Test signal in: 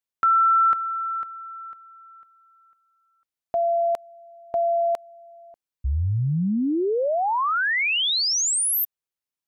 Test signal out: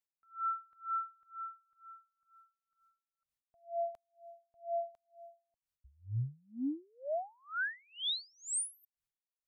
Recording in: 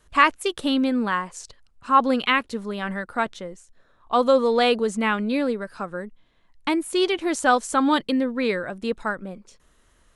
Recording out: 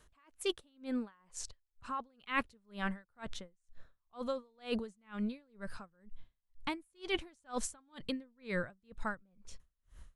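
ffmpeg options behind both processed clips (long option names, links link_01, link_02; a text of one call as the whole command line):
ffmpeg -i in.wav -af "asubboost=boost=5:cutoff=140,areverse,acompressor=threshold=-29dB:ratio=16:attack=30:release=136:knee=1:detection=peak,areverse,aeval=exprs='val(0)*pow(10,-37*(0.5-0.5*cos(2*PI*2.1*n/s))/20)':channel_layout=same,volume=-2.5dB" out.wav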